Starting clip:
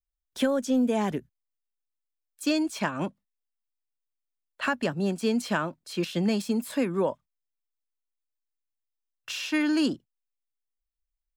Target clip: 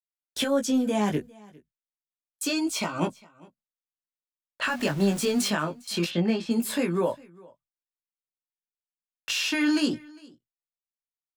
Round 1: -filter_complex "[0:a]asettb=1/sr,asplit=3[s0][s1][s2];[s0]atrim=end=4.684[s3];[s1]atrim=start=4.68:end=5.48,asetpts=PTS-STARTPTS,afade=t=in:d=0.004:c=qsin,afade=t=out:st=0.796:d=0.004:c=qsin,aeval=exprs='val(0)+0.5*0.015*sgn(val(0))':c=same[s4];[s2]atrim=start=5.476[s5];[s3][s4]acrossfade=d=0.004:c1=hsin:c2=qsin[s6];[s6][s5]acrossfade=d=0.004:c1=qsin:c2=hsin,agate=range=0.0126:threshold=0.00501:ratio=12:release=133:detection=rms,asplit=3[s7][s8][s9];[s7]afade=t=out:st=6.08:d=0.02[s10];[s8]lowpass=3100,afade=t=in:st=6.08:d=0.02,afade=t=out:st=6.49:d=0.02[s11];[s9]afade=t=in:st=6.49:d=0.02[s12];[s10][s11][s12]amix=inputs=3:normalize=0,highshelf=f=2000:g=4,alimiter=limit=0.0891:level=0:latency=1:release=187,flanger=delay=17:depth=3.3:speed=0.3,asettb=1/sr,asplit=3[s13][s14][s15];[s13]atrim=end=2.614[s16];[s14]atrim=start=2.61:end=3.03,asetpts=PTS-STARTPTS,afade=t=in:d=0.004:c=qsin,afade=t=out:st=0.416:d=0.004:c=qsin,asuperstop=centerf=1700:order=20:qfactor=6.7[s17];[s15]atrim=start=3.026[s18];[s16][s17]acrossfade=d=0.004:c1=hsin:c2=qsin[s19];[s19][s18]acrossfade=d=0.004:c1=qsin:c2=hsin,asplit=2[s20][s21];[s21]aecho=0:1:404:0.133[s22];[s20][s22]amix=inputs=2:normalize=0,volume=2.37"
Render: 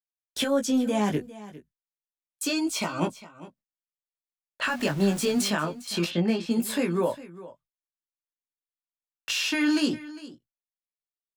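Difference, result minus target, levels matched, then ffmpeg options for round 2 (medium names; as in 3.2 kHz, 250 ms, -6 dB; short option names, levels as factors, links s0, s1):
echo-to-direct +7 dB
-filter_complex "[0:a]asettb=1/sr,asplit=3[s0][s1][s2];[s0]atrim=end=4.684[s3];[s1]atrim=start=4.68:end=5.48,asetpts=PTS-STARTPTS,afade=t=in:d=0.004:c=qsin,afade=t=out:st=0.796:d=0.004:c=qsin,aeval=exprs='val(0)+0.5*0.015*sgn(val(0))':c=same[s4];[s2]atrim=start=5.476[s5];[s3][s4]acrossfade=d=0.004:c1=hsin:c2=qsin[s6];[s6][s5]acrossfade=d=0.004:c1=qsin:c2=hsin,agate=range=0.0126:threshold=0.00501:ratio=12:release=133:detection=rms,asplit=3[s7][s8][s9];[s7]afade=t=out:st=6.08:d=0.02[s10];[s8]lowpass=3100,afade=t=in:st=6.08:d=0.02,afade=t=out:st=6.49:d=0.02[s11];[s9]afade=t=in:st=6.49:d=0.02[s12];[s10][s11][s12]amix=inputs=3:normalize=0,highshelf=f=2000:g=4,alimiter=limit=0.0891:level=0:latency=1:release=187,flanger=delay=17:depth=3.3:speed=0.3,asettb=1/sr,asplit=3[s13][s14][s15];[s13]atrim=end=2.614[s16];[s14]atrim=start=2.61:end=3.03,asetpts=PTS-STARTPTS,afade=t=in:d=0.004:c=qsin,afade=t=out:st=0.416:d=0.004:c=qsin,asuperstop=centerf=1700:order=20:qfactor=6.7[s17];[s15]atrim=start=3.026[s18];[s16][s17]acrossfade=d=0.004:c1=hsin:c2=qsin[s19];[s19][s18]acrossfade=d=0.004:c1=qsin:c2=hsin,asplit=2[s20][s21];[s21]aecho=0:1:404:0.0596[s22];[s20][s22]amix=inputs=2:normalize=0,volume=2.37"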